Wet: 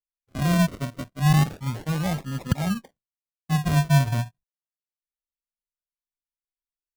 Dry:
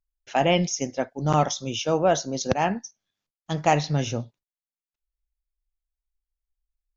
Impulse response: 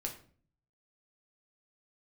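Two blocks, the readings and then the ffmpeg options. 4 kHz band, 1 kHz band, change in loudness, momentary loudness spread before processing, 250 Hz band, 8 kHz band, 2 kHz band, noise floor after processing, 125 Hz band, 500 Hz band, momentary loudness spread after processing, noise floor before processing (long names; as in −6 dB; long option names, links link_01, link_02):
−4.0 dB, −6.5 dB, +0.5 dB, 11 LU, +3.0 dB, can't be measured, −0.5 dB, below −85 dBFS, +7.0 dB, −10.5 dB, 12 LU, below −85 dBFS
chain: -af "firequalizer=gain_entry='entry(160,0);entry(370,-22);entry(900,-18)':delay=0.05:min_phase=1,agate=range=-33dB:threshold=-54dB:ratio=3:detection=peak,acrusher=samples=41:mix=1:aa=0.000001:lfo=1:lforange=24.6:lforate=0.31,volume=7.5dB"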